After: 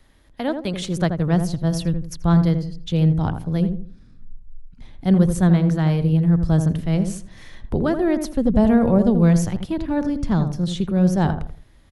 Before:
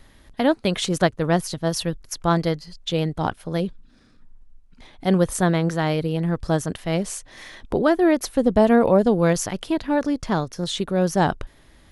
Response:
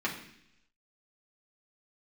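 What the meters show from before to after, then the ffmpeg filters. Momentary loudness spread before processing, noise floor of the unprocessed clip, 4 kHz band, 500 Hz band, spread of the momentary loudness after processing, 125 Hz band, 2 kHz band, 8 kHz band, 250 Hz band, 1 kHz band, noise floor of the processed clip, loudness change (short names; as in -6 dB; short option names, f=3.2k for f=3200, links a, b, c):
10 LU, -53 dBFS, -5.5 dB, -4.0 dB, 10 LU, +7.0 dB, -5.0 dB, -5.5 dB, +3.5 dB, -4.5 dB, -50 dBFS, +2.0 dB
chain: -filter_complex "[0:a]asplit=2[a][b];[b]adelay=82,lowpass=f=960:p=1,volume=-6dB,asplit=2[c][d];[d]adelay=82,lowpass=f=960:p=1,volume=0.35,asplit=2[e][f];[f]adelay=82,lowpass=f=960:p=1,volume=0.35,asplit=2[g][h];[h]adelay=82,lowpass=f=960:p=1,volume=0.35[i];[a][c][e][g][i]amix=inputs=5:normalize=0,acrossover=split=190|1100|3100[j][k][l][m];[j]dynaudnorm=f=240:g=9:m=16.5dB[n];[n][k][l][m]amix=inputs=4:normalize=0,volume=-5.5dB"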